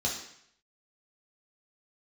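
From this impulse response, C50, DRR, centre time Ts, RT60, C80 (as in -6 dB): 5.0 dB, -3.0 dB, 33 ms, 0.70 s, 8.5 dB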